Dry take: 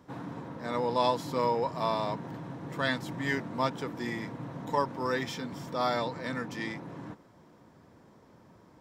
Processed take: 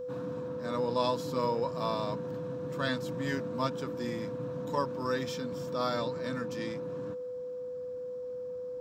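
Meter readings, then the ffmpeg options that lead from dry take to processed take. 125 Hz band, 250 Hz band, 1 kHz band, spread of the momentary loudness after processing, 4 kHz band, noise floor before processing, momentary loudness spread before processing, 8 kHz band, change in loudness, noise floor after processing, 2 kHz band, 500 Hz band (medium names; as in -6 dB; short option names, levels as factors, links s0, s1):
0.0 dB, -0.5 dB, -4.0 dB, 9 LU, -2.0 dB, -58 dBFS, 12 LU, -1.0 dB, -2.0 dB, -39 dBFS, -5.0 dB, +1.5 dB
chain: -af "aeval=exprs='val(0)+0.02*sin(2*PI*500*n/s)':c=same,equalizer=f=400:t=o:w=0.33:g=-5,equalizer=f=800:t=o:w=0.33:g=-12,equalizer=f=2000:t=o:w=0.33:g=-11,equalizer=f=3150:t=o:w=0.33:g=-3,equalizer=f=10000:t=o:w=0.33:g=-5"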